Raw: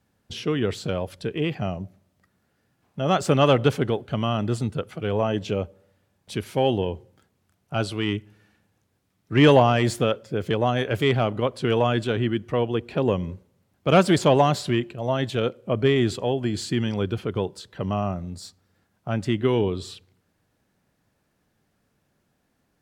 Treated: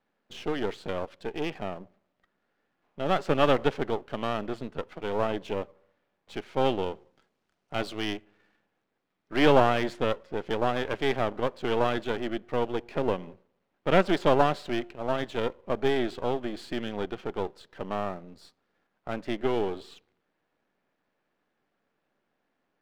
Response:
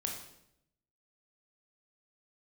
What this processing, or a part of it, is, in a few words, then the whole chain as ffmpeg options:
crystal radio: -filter_complex "[0:a]asettb=1/sr,asplit=3[link_01][link_02][link_03];[link_01]atrim=end=6.614[link_04];[link_02]atrim=start=6.61:end=8.14,asetpts=PTS-STARTPTS,afade=type=in:duration=0.004:curve=qsin,afade=type=out:start_time=1.526:duration=0.004:curve=qsin,bass=frequency=250:gain=2,treble=frequency=4000:gain=10[link_05];[link_03]atrim=start=8.136[link_06];[link_04][link_05]acrossfade=duration=0.004:curve1=hsin:curve2=qsin[link_07];[link_07][link_06]acrossfade=duration=0.004:curve1=qsin:curve2=hsin,highpass=300,lowpass=2900,aeval=exprs='if(lt(val(0),0),0.251*val(0),val(0))':channel_layout=same"

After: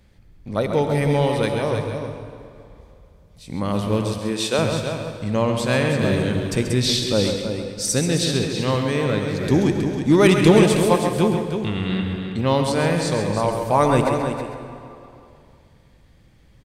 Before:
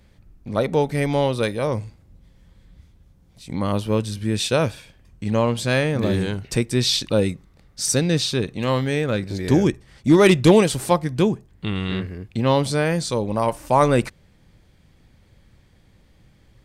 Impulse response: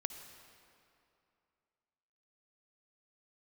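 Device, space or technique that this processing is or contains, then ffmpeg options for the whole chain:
cave: -filter_complex "[0:a]aecho=1:1:320:0.398[link_01];[1:a]atrim=start_sample=2205[link_02];[link_01][link_02]afir=irnorm=-1:irlink=0,asettb=1/sr,asplit=3[link_03][link_04][link_05];[link_03]atrim=end=4.184[link_06];[link_04]atrim=start=4.18:end=4.59,asetpts=PTS-STARTPTS,afade=type=in:duration=0.004:curve=qsin,afade=type=out:start_time=0.406:duration=0.004:curve=qsin,highpass=240[link_07];[link_05]atrim=start=4.586[link_08];[link_06][link_07]acrossfade=duration=0.004:curve1=hsin:curve2=qsin[link_09];[link_09][link_08]acrossfade=duration=0.004:curve1=qsin:curve2=hsin,asplit=2[link_10][link_11];[link_11]adelay=134.1,volume=-7dB,highshelf=frequency=4000:gain=-3.02[link_12];[link_10][link_12]amix=inputs=2:normalize=0"

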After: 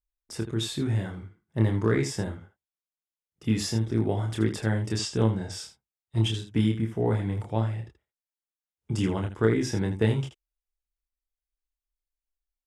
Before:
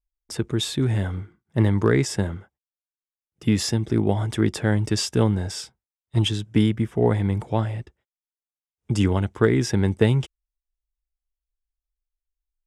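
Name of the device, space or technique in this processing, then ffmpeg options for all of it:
slapback doubling: -filter_complex "[0:a]asplit=3[link_01][link_02][link_03];[link_02]adelay=27,volume=-3.5dB[link_04];[link_03]adelay=80,volume=-10dB[link_05];[link_01][link_04][link_05]amix=inputs=3:normalize=0,asettb=1/sr,asplit=3[link_06][link_07][link_08];[link_06]atrim=end=4.984[link_09];[link_07]atrim=start=4.98:end=5.52,asetpts=PTS-STARTPTS,afade=type=in:duration=0.004:curve=qsin,afade=type=out:start_time=0.536:duration=0.004:curve=qsin,lowpass=frequency=9100:width=0.5412,lowpass=frequency=9100:width=1.3066[link_10];[link_08]atrim=start=5.516[link_11];[link_09][link_10]acrossfade=duration=0.004:curve1=hsin:curve2=qsin[link_12];[link_12][link_11]acrossfade=duration=0.004:curve1=qsin:curve2=hsin,volume=-7dB"

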